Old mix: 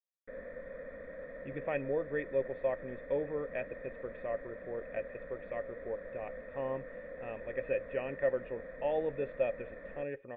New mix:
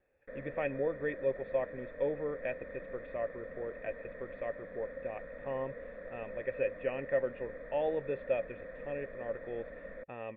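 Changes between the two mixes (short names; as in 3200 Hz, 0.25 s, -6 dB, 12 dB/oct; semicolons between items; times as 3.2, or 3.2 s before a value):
speech: entry -1.10 s; master: remove air absorption 71 m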